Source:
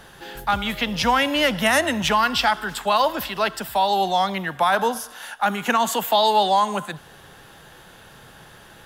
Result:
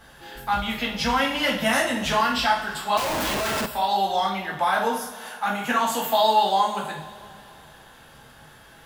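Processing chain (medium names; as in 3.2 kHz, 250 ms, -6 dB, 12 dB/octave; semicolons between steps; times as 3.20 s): two-slope reverb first 0.45 s, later 2.8 s, from -19 dB, DRR -4.5 dB; 2.97–3.66 s: Schmitt trigger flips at -27 dBFS; trim -8.5 dB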